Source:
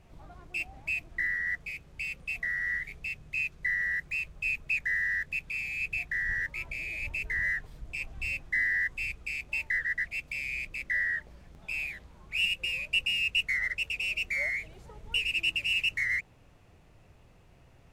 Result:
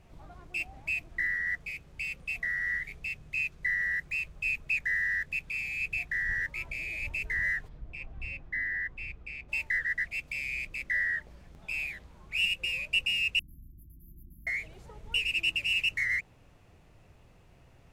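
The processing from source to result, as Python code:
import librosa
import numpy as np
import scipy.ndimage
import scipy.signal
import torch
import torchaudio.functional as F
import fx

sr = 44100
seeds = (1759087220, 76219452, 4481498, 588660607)

y = fx.spacing_loss(x, sr, db_at_10k=26, at=(7.67, 9.48), fade=0.02)
y = fx.brickwall_bandstop(y, sr, low_hz=350.0, high_hz=11000.0, at=(13.39, 14.47))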